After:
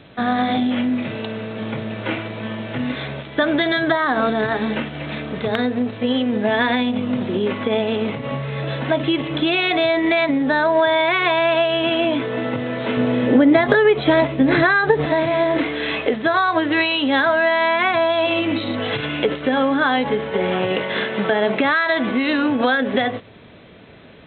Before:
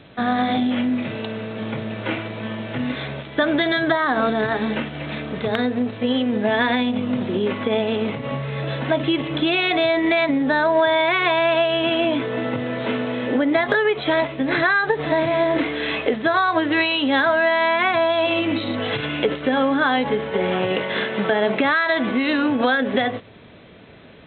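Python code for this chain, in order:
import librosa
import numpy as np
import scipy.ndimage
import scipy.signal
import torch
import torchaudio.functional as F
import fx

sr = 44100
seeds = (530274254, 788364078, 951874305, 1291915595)

y = fx.low_shelf(x, sr, hz=470.0, db=8.5, at=(12.97, 15.06))
y = F.gain(torch.from_numpy(y), 1.0).numpy()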